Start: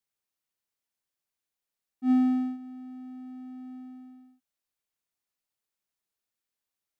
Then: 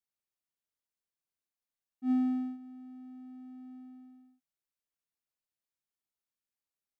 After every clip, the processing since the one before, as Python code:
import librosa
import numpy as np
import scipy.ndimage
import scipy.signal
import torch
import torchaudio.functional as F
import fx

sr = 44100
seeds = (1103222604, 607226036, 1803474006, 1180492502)

y = fx.low_shelf(x, sr, hz=340.0, db=3.5)
y = F.gain(torch.from_numpy(y), -8.0).numpy()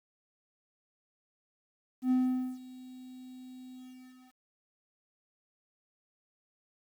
y = fx.quant_dither(x, sr, seeds[0], bits=10, dither='none')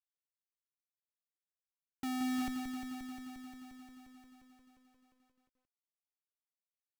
y = fx.filter_sweep_highpass(x, sr, from_hz=170.0, to_hz=620.0, start_s=0.44, end_s=3.97, q=4.4)
y = fx.schmitt(y, sr, flips_db=-33.5)
y = fx.echo_crushed(y, sr, ms=176, feedback_pct=80, bits=13, wet_db=-6.5)
y = F.gain(torch.from_numpy(y), 1.5).numpy()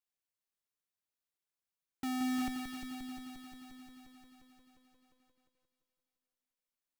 y = fx.echo_feedback(x, sr, ms=346, feedback_pct=48, wet_db=-12.5)
y = F.gain(torch.from_numpy(y), 1.0).numpy()